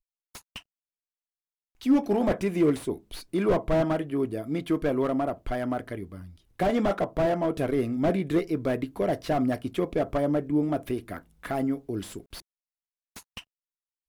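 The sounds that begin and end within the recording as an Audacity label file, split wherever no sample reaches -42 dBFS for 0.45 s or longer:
1.810000	12.400000	sound
13.160000	13.410000	sound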